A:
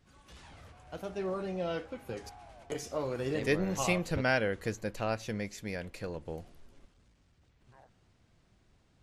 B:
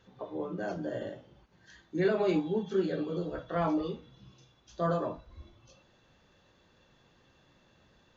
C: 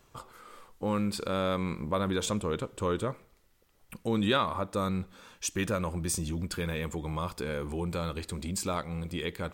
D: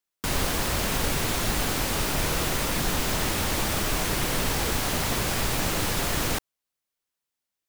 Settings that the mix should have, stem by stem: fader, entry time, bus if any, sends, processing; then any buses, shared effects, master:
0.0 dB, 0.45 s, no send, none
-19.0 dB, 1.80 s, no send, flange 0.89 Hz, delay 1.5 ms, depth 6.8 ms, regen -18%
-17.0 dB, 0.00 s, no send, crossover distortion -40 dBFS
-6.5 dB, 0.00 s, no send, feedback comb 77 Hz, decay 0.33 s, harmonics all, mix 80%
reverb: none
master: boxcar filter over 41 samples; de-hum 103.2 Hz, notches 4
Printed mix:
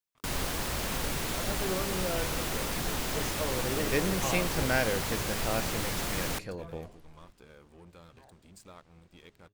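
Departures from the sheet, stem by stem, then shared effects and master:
stem D: missing feedback comb 77 Hz, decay 0.33 s, harmonics all, mix 80%; master: missing boxcar filter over 41 samples

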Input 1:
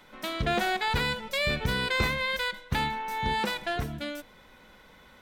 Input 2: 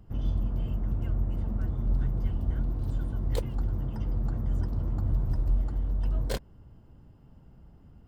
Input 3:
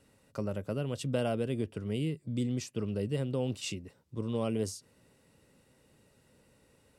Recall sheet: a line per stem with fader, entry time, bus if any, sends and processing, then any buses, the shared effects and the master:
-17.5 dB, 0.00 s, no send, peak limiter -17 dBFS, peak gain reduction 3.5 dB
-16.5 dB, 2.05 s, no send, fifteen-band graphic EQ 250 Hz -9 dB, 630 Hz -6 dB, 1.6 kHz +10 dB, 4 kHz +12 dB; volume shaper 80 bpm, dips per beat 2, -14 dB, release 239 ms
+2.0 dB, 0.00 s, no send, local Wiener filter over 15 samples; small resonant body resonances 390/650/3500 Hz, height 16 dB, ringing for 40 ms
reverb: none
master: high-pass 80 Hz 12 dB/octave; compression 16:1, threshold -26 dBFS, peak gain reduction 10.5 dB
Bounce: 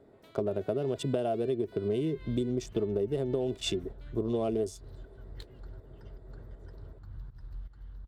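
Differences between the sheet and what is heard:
stem 1 -17.5 dB -> -26.5 dB; master: missing high-pass 80 Hz 12 dB/octave

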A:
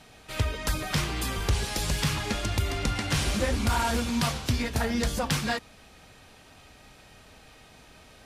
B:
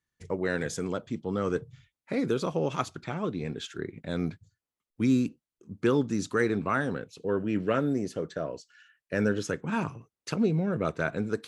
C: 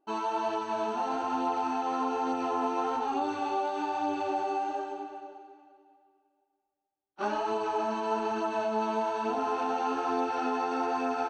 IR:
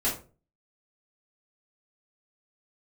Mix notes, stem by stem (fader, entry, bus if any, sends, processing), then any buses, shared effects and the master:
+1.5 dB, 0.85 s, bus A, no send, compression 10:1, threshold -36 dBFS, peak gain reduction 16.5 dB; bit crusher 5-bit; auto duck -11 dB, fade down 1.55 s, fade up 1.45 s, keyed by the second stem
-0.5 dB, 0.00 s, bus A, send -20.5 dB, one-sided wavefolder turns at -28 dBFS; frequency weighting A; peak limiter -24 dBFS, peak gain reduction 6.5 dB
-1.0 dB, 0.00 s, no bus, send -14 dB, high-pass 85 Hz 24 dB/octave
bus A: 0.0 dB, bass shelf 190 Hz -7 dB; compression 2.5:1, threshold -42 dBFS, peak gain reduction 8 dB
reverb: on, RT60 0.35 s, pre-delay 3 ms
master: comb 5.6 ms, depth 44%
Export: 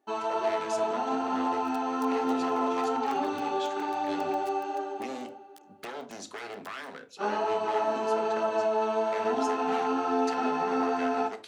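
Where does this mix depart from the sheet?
stem A: entry 0.85 s -> 1.35 s; master: missing comb 5.6 ms, depth 44%

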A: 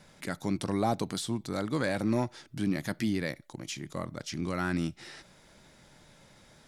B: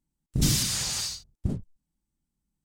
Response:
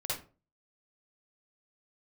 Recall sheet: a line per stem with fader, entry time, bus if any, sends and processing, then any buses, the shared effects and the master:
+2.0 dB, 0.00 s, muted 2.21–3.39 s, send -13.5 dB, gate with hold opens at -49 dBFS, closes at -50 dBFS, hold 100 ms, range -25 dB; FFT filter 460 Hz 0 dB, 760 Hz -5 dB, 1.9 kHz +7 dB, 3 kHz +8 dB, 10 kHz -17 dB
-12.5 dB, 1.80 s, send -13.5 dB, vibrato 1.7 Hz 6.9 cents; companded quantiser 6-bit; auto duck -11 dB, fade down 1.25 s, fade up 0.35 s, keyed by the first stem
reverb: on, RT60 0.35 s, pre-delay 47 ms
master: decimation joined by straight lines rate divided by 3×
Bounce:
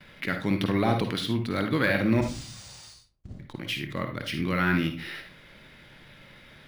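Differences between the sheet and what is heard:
stem B: missing vibrato 1.7 Hz 6.9 cents; reverb return +7.0 dB

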